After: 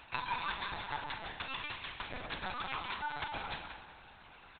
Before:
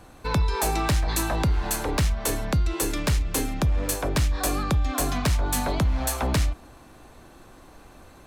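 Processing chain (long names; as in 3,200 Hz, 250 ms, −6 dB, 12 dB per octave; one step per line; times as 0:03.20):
reverb reduction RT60 1.2 s
high-pass filter 840 Hz 12 dB per octave
reverb reduction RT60 0.8 s
high-shelf EQ 2,300 Hz +10 dB
downward compressor 8 to 1, threshold −32 dBFS, peak gain reduction 17 dB
tempo change 1.8×
double-tracking delay 42 ms −10.5 dB
tape delay 188 ms, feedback 37%, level −6.5 dB, low-pass 2,600 Hz
feedback delay network reverb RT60 1.3 s, low-frequency decay 1×, high-frequency decay 0.95×, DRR 2 dB
linear-prediction vocoder at 8 kHz pitch kept
level −1 dB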